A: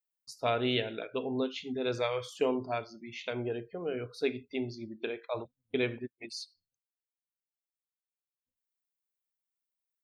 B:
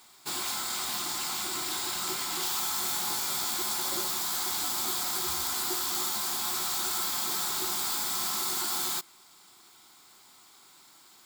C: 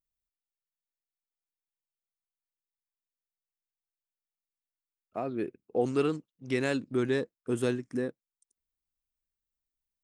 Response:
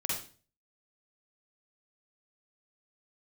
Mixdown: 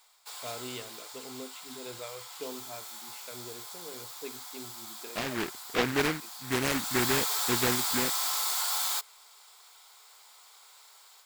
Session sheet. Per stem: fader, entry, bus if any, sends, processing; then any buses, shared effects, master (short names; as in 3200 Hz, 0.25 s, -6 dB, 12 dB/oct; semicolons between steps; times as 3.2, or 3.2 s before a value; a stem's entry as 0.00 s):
-11.5 dB, 0.00 s, no send, dry
-5.5 dB, 0.00 s, no send, Chebyshev high-pass 420 Hz, order 10; AGC gain up to 7 dB; auto duck -14 dB, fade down 0.90 s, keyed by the first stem
-0.5 dB, 0.00 s, no send, noise-modulated delay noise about 1500 Hz, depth 0.3 ms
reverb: off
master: dry